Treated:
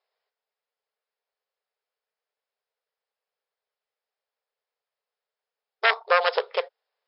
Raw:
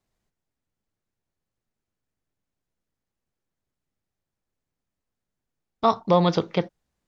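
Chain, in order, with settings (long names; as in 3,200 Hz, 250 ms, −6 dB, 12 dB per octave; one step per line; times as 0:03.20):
phase distortion by the signal itself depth 0.51 ms
linear-phase brick-wall band-pass 400–5,400 Hz
level +1.5 dB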